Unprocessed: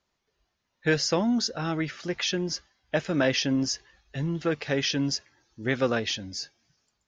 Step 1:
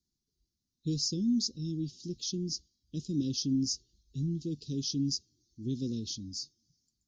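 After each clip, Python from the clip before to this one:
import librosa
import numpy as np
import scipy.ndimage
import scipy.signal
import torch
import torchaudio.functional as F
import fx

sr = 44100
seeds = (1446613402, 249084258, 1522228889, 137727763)

y = scipy.signal.sosfilt(scipy.signal.cheby2(4, 50, [640.0, 2200.0], 'bandstop', fs=sr, output='sos'), x)
y = y * librosa.db_to_amplitude(-3.0)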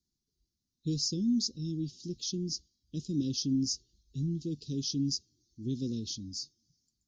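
y = x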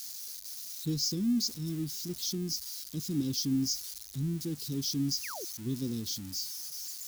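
y = x + 0.5 * 10.0 ** (-33.0 / 20.0) * np.diff(np.sign(x), prepend=np.sign(x[:1]))
y = fx.spec_paint(y, sr, seeds[0], shape='fall', start_s=5.23, length_s=0.22, low_hz=310.0, high_hz=2900.0, level_db=-42.0)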